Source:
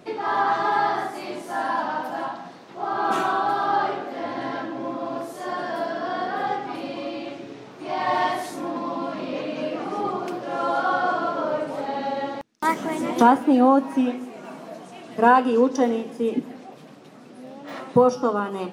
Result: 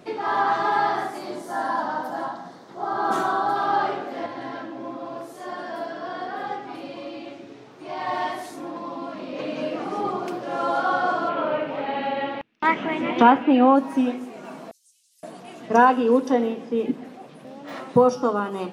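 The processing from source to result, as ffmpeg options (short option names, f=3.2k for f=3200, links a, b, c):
-filter_complex "[0:a]asettb=1/sr,asplit=3[a][b][c];[a]atrim=end=1.184[d];[b]atrim=start=1.18:end=3.56,asetpts=PTS-STARTPTS,afade=t=in:d=0.004:c=qsin,afade=t=out:st=2.376:d=0.004:c=qsin,equalizer=f=2.6k:t=o:w=0.48:g=-11[e];[c]atrim=start=3.556[f];[d][e]acrossfade=d=0.004:c1=hsin:c2=qsin[g];[g][f]acrossfade=d=0.004:c1=qsin:c2=hsin,asettb=1/sr,asplit=3[h][i][j];[h]atrim=end=4.264[k];[i]atrim=start=4.26:end=9.39,asetpts=PTS-STARTPTS,afade=t=in:d=0.004:c=qsin,afade=t=out:st=5.126:d=0.004:c=qsin,flanger=delay=1.8:depth=1.7:regen=-73:speed=1.1:shape=triangular[l];[j]atrim=start=9.386[m];[k][l]acrossfade=d=0.004:c1=hsin:c2=qsin[n];[n][m]acrossfade=d=0.004:c1=qsin:c2=hsin,asettb=1/sr,asplit=3[o][p][q];[o]atrim=end=11.294[r];[p]atrim=start=11.29:end=13.76,asetpts=PTS-STARTPTS,afade=t=in:d=0.004:c=qsin,afade=t=out:st=2.466:d=0.004:c=qsin,lowpass=f=2.7k:t=q:w=2.7[s];[q]atrim=start=13.756[t];[r][s]acrossfade=d=0.004:c1=hsin:c2=qsin[u];[u][t]acrossfade=d=0.004:c1=qsin:c2=hsin,asettb=1/sr,asplit=3[v][w][x];[v]atrim=end=14.714[y];[w]atrim=start=14.71:end=17.45,asetpts=PTS-STARTPTS,afade=t=in:d=0.004:c=qsin,afade=t=out:st=2.736:d=0.004:c=qsin,acrossover=split=5600[z][aa];[z]adelay=520[ab];[ab][aa]amix=inputs=2:normalize=0,atrim=end_sample=120834[ac];[x]atrim=start=17.446[ad];[y][ac]acrossfade=d=0.004:c1=hsin:c2=qsin[ae];[ae][ad]acrossfade=d=0.004:c1=qsin:c2=hsin"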